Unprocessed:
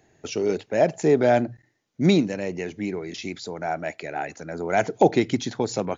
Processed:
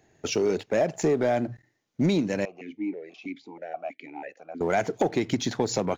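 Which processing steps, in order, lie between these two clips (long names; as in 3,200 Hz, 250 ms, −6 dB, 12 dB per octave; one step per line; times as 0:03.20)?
downward compressor 6 to 1, threshold −23 dBFS, peak gain reduction 11.5 dB
leveller curve on the samples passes 1
0:02.45–0:04.61: formant filter that steps through the vowels 6.2 Hz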